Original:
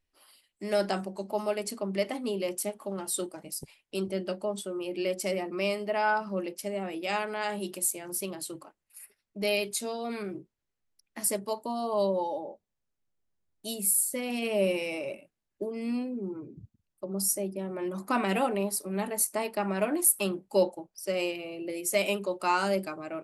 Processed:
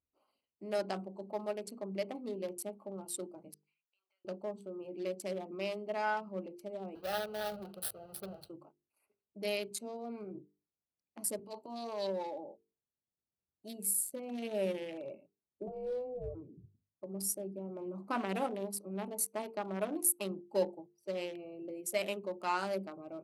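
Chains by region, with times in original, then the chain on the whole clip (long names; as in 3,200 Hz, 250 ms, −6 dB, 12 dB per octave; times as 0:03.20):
0:03.54–0:04.25: high-pass filter 1,500 Hz 24 dB per octave + high-frequency loss of the air 160 metres + downward compressor 8 to 1, threshold −58 dBFS
0:06.95–0:08.50: each half-wave held at its own peak + phaser with its sweep stopped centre 1,500 Hz, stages 8
0:11.39–0:12.44: meter weighting curve D + transient designer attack −10 dB, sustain +3 dB
0:15.67–0:16.35: bass and treble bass +14 dB, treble 0 dB + ring modulation 250 Hz
whole clip: adaptive Wiener filter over 25 samples; high-pass filter 70 Hz; mains-hum notches 50/100/150/200/250/300/350/400/450 Hz; level −6.5 dB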